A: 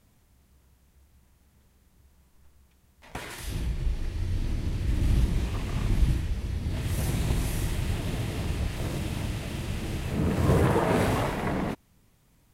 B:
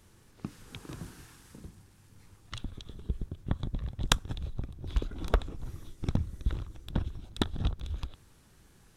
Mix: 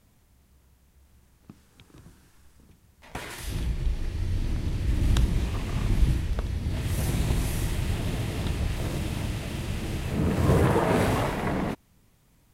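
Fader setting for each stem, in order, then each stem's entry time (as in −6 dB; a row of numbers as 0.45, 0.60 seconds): +1.0, −9.0 decibels; 0.00, 1.05 seconds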